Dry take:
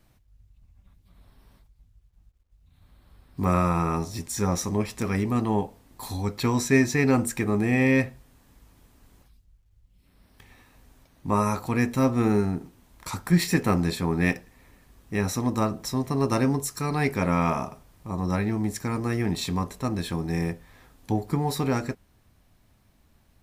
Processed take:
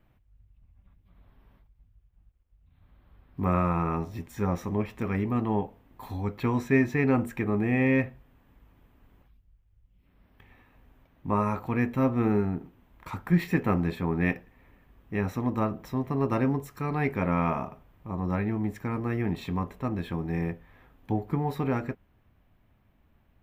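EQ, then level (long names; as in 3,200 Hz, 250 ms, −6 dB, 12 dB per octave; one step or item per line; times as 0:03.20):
high-shelf EQ 4,600 Hz −7 dB
flat-topped bell 6,700 Hz −13 dB
−2.5 dB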